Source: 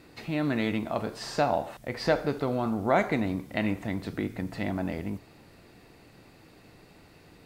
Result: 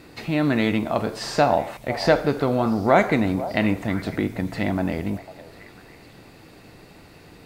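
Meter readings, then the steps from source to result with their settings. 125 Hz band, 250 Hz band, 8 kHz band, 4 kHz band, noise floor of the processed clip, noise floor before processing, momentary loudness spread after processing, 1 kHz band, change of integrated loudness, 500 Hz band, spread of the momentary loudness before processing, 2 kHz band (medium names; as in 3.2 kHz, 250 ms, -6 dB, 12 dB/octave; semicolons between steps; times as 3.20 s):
+7.0 dB, +7.0 dB, +7.0 dB, +7.0 dB, -48 dBFS, -55 dBFS, 8 LU, +7.0 dB, +7.0 dB, +7.0 dB, 8 LU, +7.0 dB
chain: repeats whose band climbs or falls 499 ms, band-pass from 640 Hz, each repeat 1.4 oct, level -12 dB; trim +7 dB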